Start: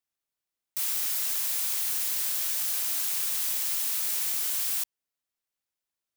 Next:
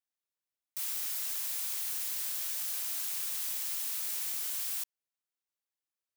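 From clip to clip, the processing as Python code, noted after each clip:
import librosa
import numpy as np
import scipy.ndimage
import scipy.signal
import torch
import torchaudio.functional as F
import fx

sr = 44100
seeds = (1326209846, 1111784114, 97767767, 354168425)

y = fx.low_shelf(x, sr, hz=180.0, db=-9.5)
y = y * librosa.db_to_amplitude(-6.5)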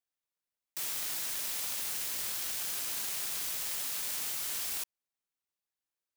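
y = fx.halfwave_hold(x, sr)
y = y * librosa.db_to_amplitude(-2.0)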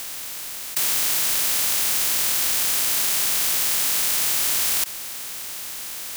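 y = fx.bin_compress(x, sr, power=0.2)
y = y * librosa.db_to_amplitude(8.5)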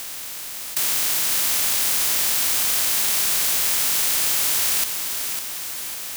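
y = fx.echo_feedback(x, sr, ms=552, feedback_pct=42, wet_db=-7)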